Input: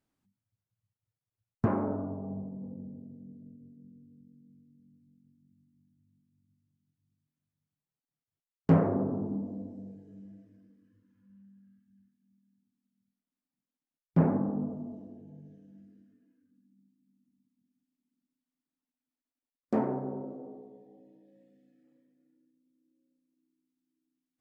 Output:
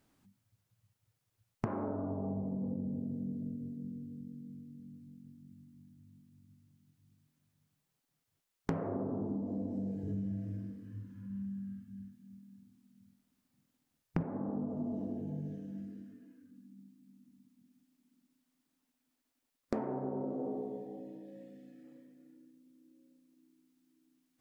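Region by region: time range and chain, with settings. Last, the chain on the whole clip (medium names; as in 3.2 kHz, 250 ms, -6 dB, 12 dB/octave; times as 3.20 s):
10.03–14.23 s: peaking EQ 93 Hz +13 dB 1.7 oct + doubling 47 ms -5.5 dB
whole clip: dynamic bell 170 Hz, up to -4 dB, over -42 dBFS, Q 1.7; compression 10:1, threshold -44 dBFS; trim +11 dB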